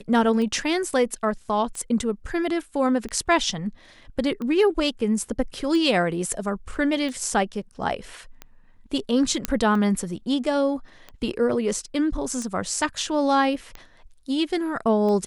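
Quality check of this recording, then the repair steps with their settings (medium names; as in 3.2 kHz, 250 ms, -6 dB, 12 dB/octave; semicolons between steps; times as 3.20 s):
tick 45 rpm -21 dBFS
9.45 s: pop -6 dBFS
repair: de-click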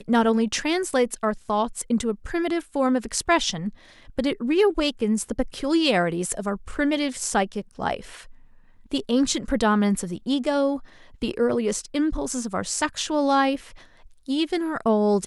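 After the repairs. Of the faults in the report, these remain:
nothing left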